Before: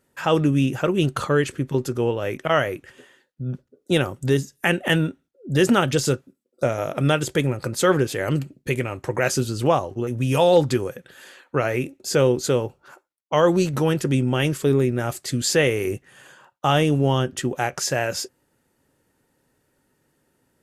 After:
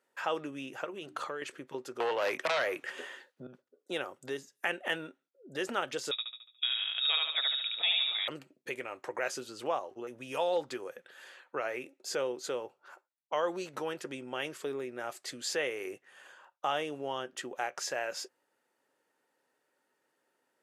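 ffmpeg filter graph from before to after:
ffmpeg -i in.wav -filter_complex "[0:a]asettb=1/sr,asplit=3[link_01][link_02][link_03];[link_01]atrim=end=0.844[link_04];[link_02]atrim=start=0.84:end=1.42,asetpts=PTS-STARTPTS,afade=type=in:duration=0.004:curve=qsin,afade=type=out:start_time=0.576:duration=0.004:curve=qsin,bandreject=frequency=60:width_type=h:width=6,bandreject=frequency=120:width_type=h:width=6,bandreject=frequency=180:width_type=h:width=6,bandreject=frequency=240:width_type=h:width=6,bandreject=frequency=300:width_type=h:width=6,acompressor=threshold=-23dB:ratio=6:attack=3.2:release=140:knee=1:detection=peak[link_05];[link_03]atrim=start=1.416[link_06];[link_04][link_05]acrossfade=duration=0.004:curve1=hsin:curve2=qsin[link_07];[link_07][link_06]acrossfade=duration=0.004:curve1=qsin:curve2=hsin,asettb=1/sr,asplit=3[link_08][link_09][link_10];[link_08]atrim=end=2.004[link_11];[link_09]atrim=start=2:end=3.47,asetpts=PTS-STARTPTS,afade=type=in:duration=0.004:curve=qsin,afade=type=out:start_time=1.466:duration=0.004:curve=qsin,acrossover=split=160|540[link_12][link_13][link_14];[link_12]acompressor=threshold=-41dB:ratio=4[link_15];[link_13]acompressor=threshold=-37dB:ratio=4[link_16];[link_14]acompressor=threshold=-25dB:ratio=4[link_17];[link_15][link_16][link_17]amix=inputs=3:normalize=0,aeval=exprs='0.237*sin(PI/2*3.55*val(0)/0.237)':channel_layout=same[link_18];[link_10]atrim=start=3.466[link_19];[link_11][link_18]acrossfade=duration=0.004:curve1=hsin:curve2=qsin[link_20];[link_20][link_19]acrossfade=duration=0.004:curve1=qsin:curve2=hsin,asettb=1/sr,asplit=3[link_21][link_22][link_23];[link_21]atrim=end=6.114[link_24];[link_22]atrim=start=6.11:end=8.28,asetpts=PTS-STARTPTS,afade=type=in:duration=0.004:curve=qsin,afade=type=out:start_time=2.166:duration=0.004:curve=qsin,aecho=1:1:72|144|216|288|360|432:0.708|0.311|0.137|0.0603|0.0265|0.0117,atrim=end_sample=95697,lowpass=frequency=3300:width_type=q:width=0.5098,lowpass=frequency=3300:width_type=q:width=0.6013,lowpass=frequency=3300:width_type=q:width=0.9,lowpass=frequency=3300:width_type=q:width=2.563,afreqshift=-3900[link_25];[link_23]atrim=start=8.276[link_26];[link_24][link_25]acrossfade=duration=0.004:curve1=hsin:curve2=qsin[link_27];[link_27][link_26]acrossfade=duration=0.004:curve1=qsin:curve2=hsin,lowpass=frequency=3900:poles=1,acompressor=threshold=-30dB:ratio=1.5,highpass=520,volume=-5dB" out.wav

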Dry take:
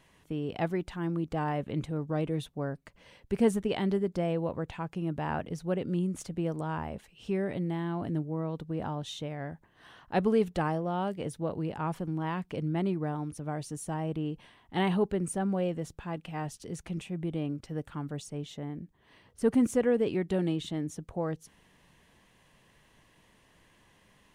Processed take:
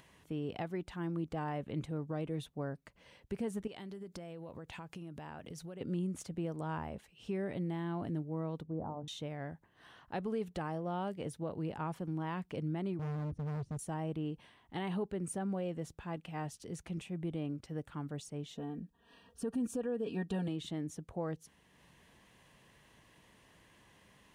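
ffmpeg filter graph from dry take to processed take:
ffmpeg -i in.wav -filter_complex "[0:a]asettb=1/sr,asplit=3[link_01][link_02][link_03];[link_01]atrim=end=3.674[link_04];[link_02]atrim=start=3.67:end=5.81,asetpts=PTS-STARTPTS,afade=type=in:duration=0.004:curve=qsin,afade=type=out:start_time=2.136:duration=0.004:curve=qsin,highshelf=frequency=2800:gain=8.5,acompressor=threshold=-37dB:ratio=12:attack=3.2:release=140:knee=1:detection=peak[link_05];[link_03]atrim=start=5.806[link_06];[link_04][link_05]acrossfade=duration=0.004:curve1=hsin:curve2=qsin[link_07];[link_07][link_06]acrossfade=duration=0.004:curve1=qsin:curve2=hsin,asettb=1/sr,asplit=3[link_08][link_09][link_10];[link_08]atrim=end=8.634[link_11];[link_09]atrim=start=8.63:end=9.08,asetpts=PTS-STARTPTS,afade=type=in:duration=0.004:curve=qsin,afade=type=out:start_time=0.446:duration=0.004:curve=qsin,lowpass=frequency=1000:width=0.5412,lowpass=frequency=1000:width=1.3066,bandreject=frequency=50:width_type=h:width=6,bandreject=frequency=100:width_type=h:width=6,bandreject=frequency=150:width_type=h:width=6,bandreject=frequency=200:width_type=h:width=6,bandreject=frequency=250:width_type=h:width=6,bandreject=frequency=300:width_type=h:width=6,bandreject=frequency=350:width_type=h:width=6,bandreject=frequency=400:width_type=h:width=6,bandreject=frequency=450:width_type=h:width=6,bandreject=frequency=500:width_type=h:width=6[link_12];[link_10]atrim=start=9.076[link_13];[link_11][link_12]acrossfade=duration=0.004:curve1=hsin:curve2=qsin[link_14];[link_14][link_13]acrossfade=duration=0.004:curve1=qsin:curve2=hsin,asettb=1/sr,asplit=3[link_15][link_16][link_17];[link_15]atrim=end=12.994[link_18];[link_16]atrim=start=12.99:end=13.79,asetpts=PTS-STARTPTS,afade=type=in:duration=0.004:curve=qsin,afade=type=out:start_time=0.796:duration=0.004:curve=qsin,adynamicsmooth=sensitivity=4:basefreq=840,bass=frequency=250:gain=14,treble=frequency=4000:gain=14,asoftclip=type=hard:threshold=-31.5dB[link_19];[link_17]atrim=start=13.786[link_20];[link_18][link_19]acrossfade=duration=0.004:curve1=hsin:curve2=qsin[link_21];[link_21][link_20]acrossfade=duration=0.004:curve1=qsin:curve2=hsin,asettb=1/sr,asplit=3[link_22][link_23][link_24];[link_22]atrim=end=18.554[link_25];[link_23]atrim=start=18.55:end=20.48,asetpts=PTS-STARTPTS,afade=type=in:duration=0.004:curve=qsin,afade=type=out:start_time=1.926:duration=0.004:curve=qsin,asuperstop=centerf=2100:order=20:qfactor=4.8,aecho=1:1:4.3:0.75,atrim=end_sample=85113[link_26];[link_24]atrim=start=20.476[link_27];[link_25][link_26]acrossfade=duration=0.004:curve1=hsin:curve2=qsin[link_28];[link_28][link_27]acrossfade=duration=0.004:curve1=qsin:curve2=hsin,highpass=41,acompressor=mode=upward:threshold=-52dB:ratio=2.5,alimiter=limit=-23.5dB:level=0:latency=1:release=193,volume=-4.5dB" out.wav

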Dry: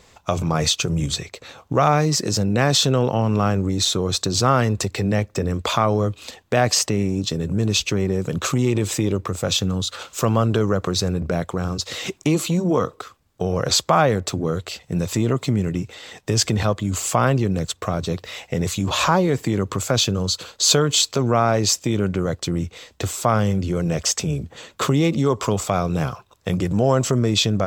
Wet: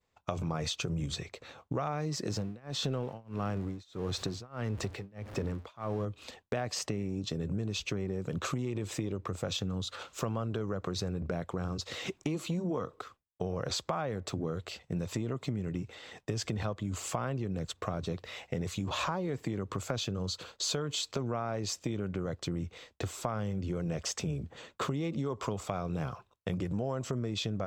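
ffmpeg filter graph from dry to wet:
ffmpeg -i in.wav -filter_complex "[0:a]asettb=1/sr,asplit=3[link_01][link_02][link_03];[link_01]atrim=end=2.304[link_04];[link_02]atrim=start=2.3:end=6.05,asetpts=PTS-STARTPTS,afade=type=in:duration=0.004:curve=qsin,afade=type=out:start_time=3.746:duration=0.004:curve=qsin,aeval=exprs='val(0)+0.5*0.0376*sgn(val(0))':channel_layout=same,highshelf=frequency=6500:gain=-5.5,tremolo=f=1.6:d=0.98[link_05];[link_03]atrim=start=6.046[link_06];[link_04][link_05]acrossfade=duration=0.004:curve1=hsin:curve2=qsin[link_07];[link_07][link_06]acrossfade=duration=0.004:curve1=qsin:curve2=hsin,aemphasis=mode=reproduction:type=cd,agate=range=-33dB:threshold=-41dB:ratio=3:detection=peak,acompressor=threshold=-22dB:ratio=6,volume=-8dB" out.wav

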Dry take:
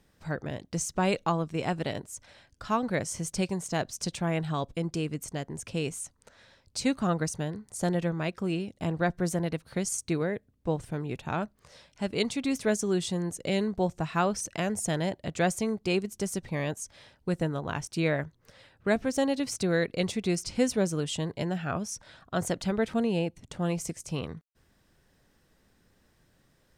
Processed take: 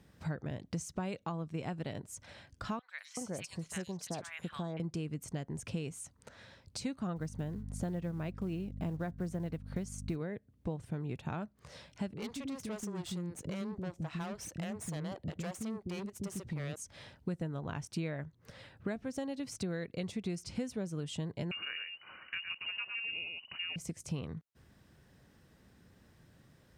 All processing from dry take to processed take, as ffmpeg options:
ffmpeg -i in.wav -filter_complex "[0:a]asettb=1/sr,asplit=3[link_01][link_02][link_03];[link_01]atrim=end=2.794[link_04];[link_02]atrim=start=2.79:end=4.8,asetpts=PTS-STARTPTS,afade=type=in:duration=0.004:curve=qsin,afade=type=out:start_time=2.006:duration=0.004:curve=qsin,lowshelf=frequency=370:gain=-9.5,acrossover=split=1300|3900[link_05][link_06][link_07];[link_07]adelay=100[link_08];[link_05]adelay=380[link_09];[link_09][link_06][link_08]amix=inputs=3:normalize=0,atrim=end_sample=88641[link_10];[link_03]atrim=start=4.796[link_11];[link_04][link_10]acrossfade=duration=0.004:curve1=hsin:curve2=qsin[link_12];[link_12][link_11]acrossfade=duration=0.004:curve1=qsin:curve2=hsin,asettb=1/sr,asplit=3[link_13][link_14][link_15];[link_13]atrim=end=7.164[link_16];[link_14]atrim=start=7.16:end=10.16,asetpts=PTS-STARTPTS,afade=type=in:duration=0.004:curve=qsin,afade=type=out:start_time=2.996:duration=0.004:curve=qsin,highshelf=frequency=2800:gain=-7,acrusher=bits=7:mode=log:mix=0:aa=0.000001,aeval=exprs='val(0)+0.01*(sin(2*PI*50*n/s)+sin(2*PI*2*50*n/s)/2+sin(2*PI*3*50*n/s)/3+sin(2*PI*4*50*n/s)/4+sin(2*PI*5*50*n/s)/5)':channel_layout=same[link_17];[link_15]atrim=start=10.156[link_18];[link_16][link_17]acrossfade=duration=0.004:curve1=hsin:curve2=qsin[link_19];[link_19][link_18]acrossfade=duration=0.004:curve1=qsin:curve2=hsin,asettb=1/sr,asplit=3[link_20][link_21][link_22];[link_20]atrim=end=12.134[link_23];[link_21]atrim=start=12.13:end=16.76,asetpts=PTS-STARTPTS,afade=type=in:duration=0.004:curve=qsin,afade=type=out:start_time=4.626:duration=0.004:curve=qsin,aeval=exprs='(tanh(35.5*val(0)+0.6)-tanh(0.6))/35.5':channel_layout=same,acrossover=split=360[link_24][link_25];[link_25]adelay=40[link_26];[link_24][link_26]amix=inputs=2:normalize=0,atrim=end_sample=204183[link_27];[link_22]atrim=start=16.756[link_28];[link_23][link_27]acrossfade=duration=0.004:curve1=hsin:curve2=qsin[link_29];[link_29][link_28]acrossfade=duration=0.004:curve1=qsin:curve2=hsin,asettb=1/sr,asplit=3[link_30][link_31][link_32];[link_30]atrim=end=21.514[link_33];[link_31]atrim=start=21.51:end=23.76,asetpts=PTS-STARTPTS,afade=type=in:duration=0.004:curve=qsin,afade=type=out:start_time=2.246:duration=0.004:curve=qsin,aecho=1:1:109:0.501,atrim=end_sample=99225,lowpass=frequency=2600:width_type=q:width=0.5098,lowpass=frequency=2600:width_type=q:width=0.6013,lowpass=frequency=2600:width_type=q:width=0.9,lowpass=frequency=2600:width_type=q:width=2.563,afreqshift=-3000[link_34];[link_32]atrim=start=23.756[link_35];[link_33][link_34]acrossfade=duration=0.004:curve1=hsin:curve2=qsin[link_36];[link_36][link_35]acrossfade=duration=0.004:curve1=qsin:curve2=hsin,acompressor=threshold=-41dB:ratio=4,highpass=66,bass=frequency=250:gain=6,treble=frequency=4000:gain=-3,volume=1.5dB" out.wav

